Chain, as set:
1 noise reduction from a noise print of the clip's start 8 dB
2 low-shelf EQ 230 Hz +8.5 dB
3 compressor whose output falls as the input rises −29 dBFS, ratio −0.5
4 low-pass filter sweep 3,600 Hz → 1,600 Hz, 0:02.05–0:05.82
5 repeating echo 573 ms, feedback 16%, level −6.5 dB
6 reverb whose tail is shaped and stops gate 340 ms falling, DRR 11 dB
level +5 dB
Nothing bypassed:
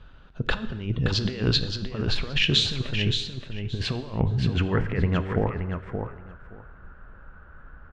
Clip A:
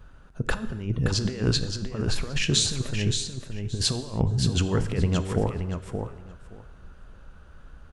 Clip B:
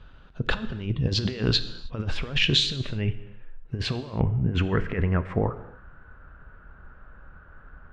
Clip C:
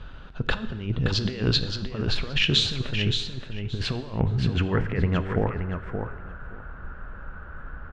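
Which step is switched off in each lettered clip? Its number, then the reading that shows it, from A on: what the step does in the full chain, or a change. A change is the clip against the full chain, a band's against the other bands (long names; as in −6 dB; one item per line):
4, 8 kHz band +13.5 dB
5, echo-to-direct ratio −5.0 dB to −11.0 dB
1, change in momentary loudness spread +6 LU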